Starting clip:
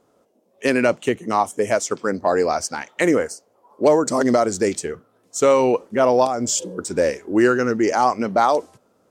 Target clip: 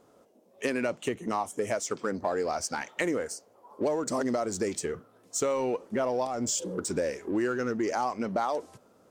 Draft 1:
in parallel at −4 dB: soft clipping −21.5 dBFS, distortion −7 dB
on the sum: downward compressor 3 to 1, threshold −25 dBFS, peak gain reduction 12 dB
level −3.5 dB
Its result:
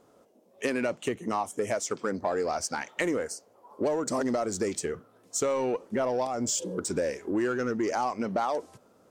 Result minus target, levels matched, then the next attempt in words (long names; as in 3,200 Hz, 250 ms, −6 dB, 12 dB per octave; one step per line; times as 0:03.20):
soft clipping: distortion −5 dB
in parallel at −4 dB: soft clipping −33 dBFS, distortion −2 dB
on the sum: downward compressor 3 to 1, threshold −25 dBFS, peak gain reduction 11.5 dB
level −3.5 dB